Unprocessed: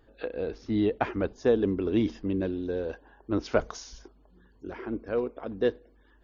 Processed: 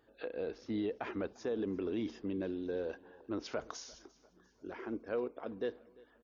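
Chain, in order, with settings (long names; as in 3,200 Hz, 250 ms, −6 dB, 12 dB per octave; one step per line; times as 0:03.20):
brickwall limiter −22 dBFS, peak gain reduction 10.5 dB
high-pass filter 230 Hz 6 dB per octave
repeating echo 347 ms, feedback 46%, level −23 dB
level −4.5 dB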